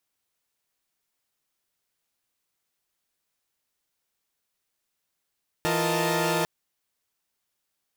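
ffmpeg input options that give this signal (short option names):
-f lavfi -i "aevalsrc='0.0447*((2*mod(164.81*t,1)-1)+(2*mod(349.23*t,1)-1)+(2*mod(466.16*t,1)-1)+(2*mod(622.25*t,1)-1)+(2*mod(880*t,1)-1))':d=0.8:s=44100"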